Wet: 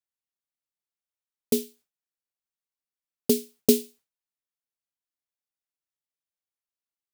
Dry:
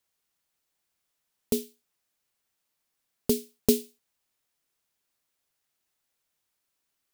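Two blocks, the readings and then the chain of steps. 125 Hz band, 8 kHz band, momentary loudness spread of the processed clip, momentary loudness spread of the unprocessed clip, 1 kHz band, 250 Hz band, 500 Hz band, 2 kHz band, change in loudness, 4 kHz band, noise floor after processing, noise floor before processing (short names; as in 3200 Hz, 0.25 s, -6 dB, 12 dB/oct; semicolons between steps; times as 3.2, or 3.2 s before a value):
-1.0 dB, +3.0 dB, 9 LU, 5 LU, -0.5 dB, +3.0 dB, +3.0 dB, +3.0 dB, +3.0 dB, +3.5 dB, under -85 dBFS, -81 dBFS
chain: gate with hold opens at -56 dBFS; gain +3.5 dB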